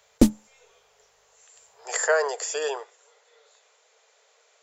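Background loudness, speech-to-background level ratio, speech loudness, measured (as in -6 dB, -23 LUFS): -22.0 LUFS, -4.5 dB, -26.5 LUFS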